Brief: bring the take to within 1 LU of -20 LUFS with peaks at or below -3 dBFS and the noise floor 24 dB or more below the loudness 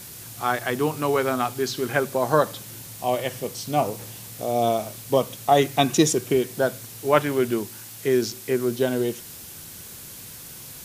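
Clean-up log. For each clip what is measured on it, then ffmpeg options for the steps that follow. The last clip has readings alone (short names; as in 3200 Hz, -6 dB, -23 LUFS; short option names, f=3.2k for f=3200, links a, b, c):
noise floor -41 dBFS; noise floor target -48 dBFS; loudness -24.0 LUFS; peak -3.0 dBFS; loudness target -20.0 LUFS
-> -af "afftdn=nr=7:nf=-41"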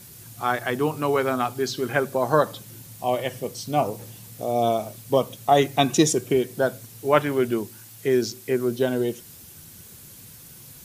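noise floor -46 dBFS; noise floor target -48 dBFS
-> -af "afftdn=nr=6:nf=-46"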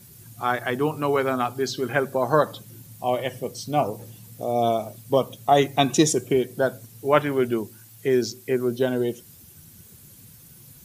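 noise floor -49 dBFS; loudness -24.0 LUFS; peak -2.5 dBFS; loudness target -20.0 LUFS
-> -af "volume=4dB,alimiter=limit=-3dB:level=0:latency=1"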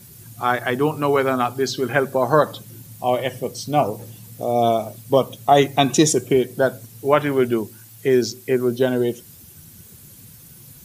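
loudness -20.5 LUFS; peak -3.0 dBFS; noise floor -45 dBFS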